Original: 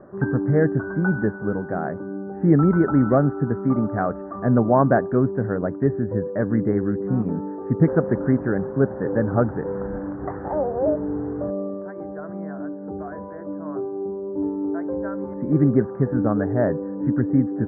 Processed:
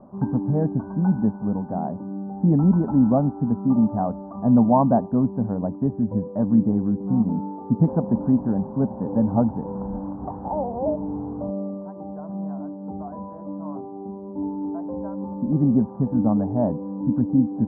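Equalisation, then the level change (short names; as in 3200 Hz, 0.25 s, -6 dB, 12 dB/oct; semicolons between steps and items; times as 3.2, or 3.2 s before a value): low shelf 90 Hz +6 dB; dynamic EQ 1300 Hz, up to -7 dB, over -46 dBFS, Q 4; EQ curve 140 Hz 0 dB, 230 Hz +10 dB, 370 Hz -7 dB, 930 Hz +9 dB, 1800 Hz -21 dB; -4.5 dB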